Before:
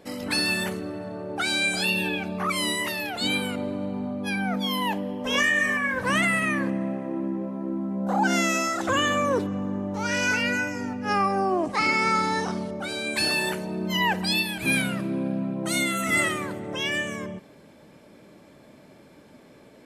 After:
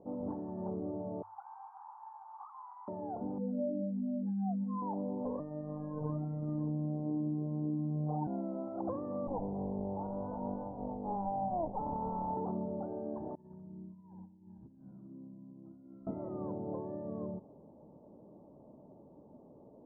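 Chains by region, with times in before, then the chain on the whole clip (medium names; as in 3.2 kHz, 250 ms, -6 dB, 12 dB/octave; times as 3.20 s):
1.22–2.88 s: one-bit delta coder 16 kbps, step -27.5 dBFS + steep high-pass 810 Hz 96 dB/octave + compression 2:1, threshold -33 dBFS
3.38–4.82 s: spectral contrast enhancement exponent 3.2 + peaking EQ 660 Hz +8 dB 1.2 oct
5.39–8.27 s: bass shelf 350 Hz +11 dB + robot voice 151 Hz
9.27–12.37 s: comb filter that takes the minimum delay 1.3 ms + low-pass 1.1 kHz 24 dB/octave
13.35–16.07 s: amplifier tone stack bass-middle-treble 6-0-2 + flutter echo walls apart 11 m, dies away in 0.85 s + compressor with a negative ratio -43 dBFS, ratio -0.5
whole clip: compression, threshold -26 dBFS; steep low-pass 960 Hz 48 dB/octave; hum notches 50/100 Hz; trim -5 dB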